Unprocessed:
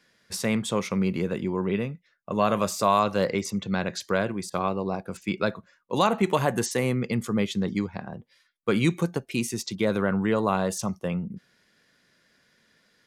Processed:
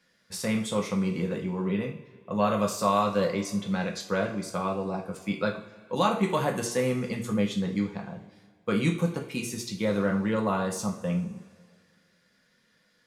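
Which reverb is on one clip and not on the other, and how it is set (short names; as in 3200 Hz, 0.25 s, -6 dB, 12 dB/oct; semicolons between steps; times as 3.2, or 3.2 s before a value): two-slope reverb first 0.38 s, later 2 s, from -18 dB, DRR 0.5 dB; gain -5.5 dB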